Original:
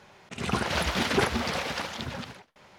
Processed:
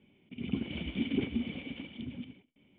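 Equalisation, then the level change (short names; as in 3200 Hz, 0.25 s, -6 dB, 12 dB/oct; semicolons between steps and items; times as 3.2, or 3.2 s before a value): vocal tract filter i; +3.5 dB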